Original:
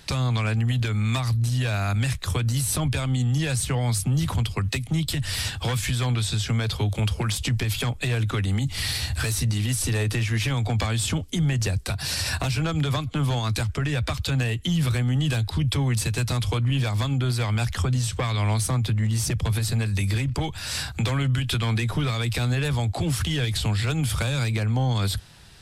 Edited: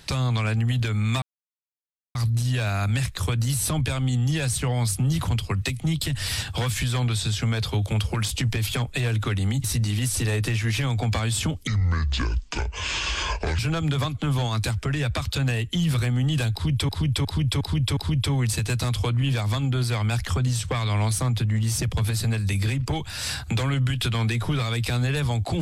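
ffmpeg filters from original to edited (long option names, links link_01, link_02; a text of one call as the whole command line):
ffmpeg -i in.wav -filter_complex "[0:a]asplit=9[link_01][link_02][link_03][link_04][link_05][link_06][link_07][link_08][link_09];[link_01]atrim=end=1.22,asetpts=PTS-STARTPTS,afade=type=out:start_time=1.216:duration=0.004:curve=hsin,apad=pad_dur=0.93[link_10];[link_02]atrim=start=1.22:end=8.712,asetpts=PTS-STARTPTS,afade=type=in:duration=0.004:curve=hsin[link_11];[link_03]atrim=start=9.308:end=11.344[link_12];[link_04]atrim=start=11.34:end=12.51,asetpts=PTS-STARTPTS,asetrate=26901,aresample=44100,atrim=end_sample=84585,asetpts=PTS-STARTPTS[link_13];[link_05]atrim=start=12.506:end=15.812[link_14];[link_06]atrim=start=15.448:end=15.812[link_15];[link_07]atrim=start=15.448:end=15.812[link_16];[link_08]atrim=start=15.448:end=15.812[link_17];[link_09]atrim=start=15.448[link_18];[link_10][link_11]concat=n=2:v=0:a=1[link_19];[link_19][link_12]acrossfade=duration=0.004:curve1=hsin:curve2=hsin[link_20];[link_20][link_13]acrossfade=duration=0.004:curve1=hsin:curve2=hsin[link_21];[link_21][link_14]acrossfade=duration=0.004:curve1=hsin:curve2=hsin[link_22];[link_22][link_15]acrossfade=duration=0.004:curve1=hsin:curve2=hsin[link_23];[link_23][link_16]acrossfade=duration=0.004:curve1=hsin:curve2=hsin[link_24];[link_24][link_17]acrossfade=duration=0.004:curve1=hsin:curve2=hsin[link_25];[link_25][link_18]acrossfade=duration=0.004:curve1=hsin:curve2=hsin" out.wav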